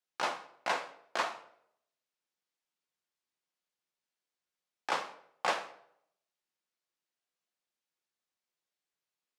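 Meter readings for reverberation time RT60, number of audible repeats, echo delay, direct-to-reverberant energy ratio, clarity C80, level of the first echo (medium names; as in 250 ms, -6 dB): 0.70 s, no echo, no echo, 6.0 dB, 16.5 dB, no echo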